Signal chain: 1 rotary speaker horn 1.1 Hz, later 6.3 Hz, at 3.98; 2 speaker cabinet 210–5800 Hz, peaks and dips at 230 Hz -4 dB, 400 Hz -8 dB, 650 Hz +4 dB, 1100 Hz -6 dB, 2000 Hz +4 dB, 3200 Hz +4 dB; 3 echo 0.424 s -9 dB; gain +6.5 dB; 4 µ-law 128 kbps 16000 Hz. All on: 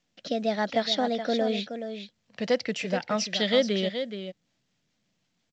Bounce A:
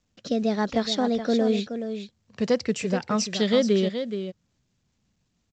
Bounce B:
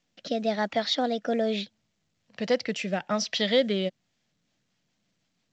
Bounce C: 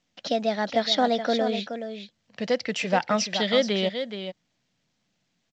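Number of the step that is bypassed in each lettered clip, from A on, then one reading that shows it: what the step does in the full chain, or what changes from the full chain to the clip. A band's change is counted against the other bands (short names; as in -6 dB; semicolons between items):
2, momentary loudness spread change -3 LU; 3, momentary loudness spread change -5 LU; 1, loudness change +2.5 LU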